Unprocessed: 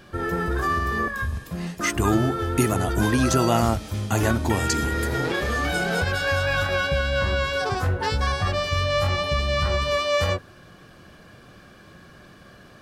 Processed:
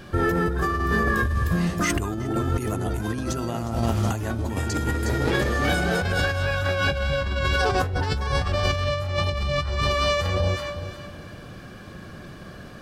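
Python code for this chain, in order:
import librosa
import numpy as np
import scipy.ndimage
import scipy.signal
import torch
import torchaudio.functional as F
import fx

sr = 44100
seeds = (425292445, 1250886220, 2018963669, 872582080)

p1 = fx.low_shelf(x, sr, hz=320.0, db=4.5)
p2 = p1 + fx.echo_alternate(p1, sr, ms=181, hz=860.0, feedback_pct=53, wet_db=-5.0, dry=0)
y = fx.over_compress(p2, sr, threshold_db=-24.0, ratio=-1.0)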